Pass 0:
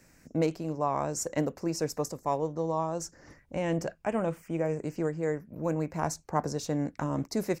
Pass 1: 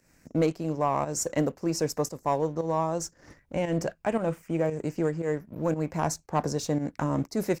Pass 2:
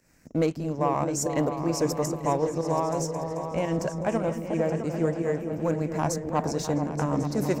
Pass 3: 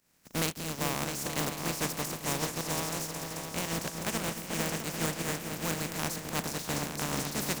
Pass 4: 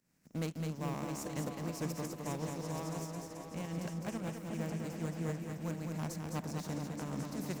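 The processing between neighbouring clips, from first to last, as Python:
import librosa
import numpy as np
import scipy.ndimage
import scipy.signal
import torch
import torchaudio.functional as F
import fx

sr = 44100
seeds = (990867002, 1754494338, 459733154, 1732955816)

y1 = fx.leveller(x, sr, passes=1)
y1 = fx.volume_shaper(y1, sr, bpm=115, per_beat=1, depth_db=-10, release_ms=157.0, shape='fast start')
y2 = fx.echo_opening(y1, sr, ms=219, hz=200, octaves=2, feedback_pct=70, wet_db=-3)
y3 = fx.spec_flatten(y2, sr, power=0.29)
y3 = fx.peak_eq(y3, sr, hz=180.0, db=7.5, octaves=1.4)
y3 = F.gain(torch.from_numpy(y3), -8.0).numpy()
y4 = fx.spec_expand(y3, sr, power=1.9)
y4 = y4 + 10.0 ** (-5.0 / 20.0) * np.pad(y4, (int(209 * sr / 1000.0), 0))[:len(y4)]
y4 = F.gain(torch.from_numpy(y4), -6.0).numpy()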